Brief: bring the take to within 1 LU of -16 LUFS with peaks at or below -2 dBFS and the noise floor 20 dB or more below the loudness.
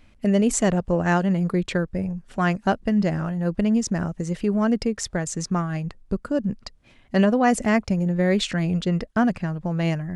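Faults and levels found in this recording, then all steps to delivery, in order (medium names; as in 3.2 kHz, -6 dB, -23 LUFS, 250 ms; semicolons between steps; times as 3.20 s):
loudness -23.5 LUFS; peak level -6.5 dBFS; loudness target -16.0 LUFS
-> trim +7.5 dB; peak limiter -2 dBFS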